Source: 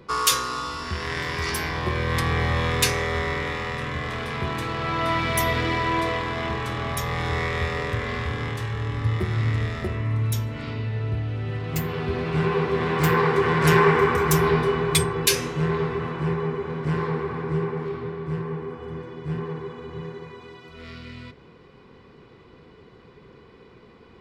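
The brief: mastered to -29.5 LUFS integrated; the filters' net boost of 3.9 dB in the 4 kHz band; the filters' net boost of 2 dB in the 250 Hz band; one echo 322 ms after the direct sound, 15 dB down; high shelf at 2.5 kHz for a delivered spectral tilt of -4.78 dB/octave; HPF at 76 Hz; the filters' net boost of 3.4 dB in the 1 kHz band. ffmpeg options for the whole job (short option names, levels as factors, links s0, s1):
-af "highpass=76,equalizer=f=250:t=o:g=3.5,equalizer=f=1000:t=o:g=4,highshelf=f=2500:g=-4.5,equalizer=f=4000:t=o:g=8.5,aecho=1:1:322:0.178,volume=0.473"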